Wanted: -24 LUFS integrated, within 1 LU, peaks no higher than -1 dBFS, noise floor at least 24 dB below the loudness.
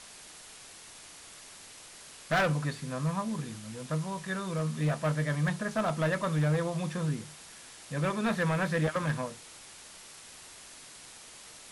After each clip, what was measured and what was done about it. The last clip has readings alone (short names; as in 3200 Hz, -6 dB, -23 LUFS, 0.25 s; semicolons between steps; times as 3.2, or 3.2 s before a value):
clipped 1.1%; flat tops at -22.5 dBFS; noise floor -50 dBFS; noise floor target -55 dBFS; loudness -31.0 LUFS; peak -22.5 dBFS; loudness target -24.0 LUFS
-> clip repair -22.5 dBFS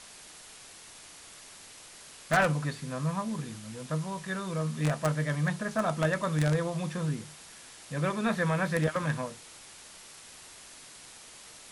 clipped 0.0%; noise floor -50 dBFS; noise floor target -55 dBFS
-> noise print and reduce 6 dB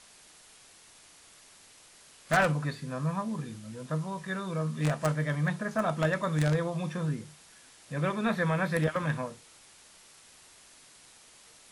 noise floor -56 dBFS; loudness -30.5 LUFS; peak -13.5 dBFS; loudness target -24.0 LUFS
-> gain +6.5 dB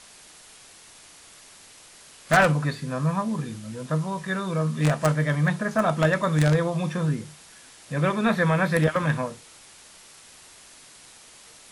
loudness -24.0 LUFS; peak -7.0 dBFS; noise floor -50 dBFS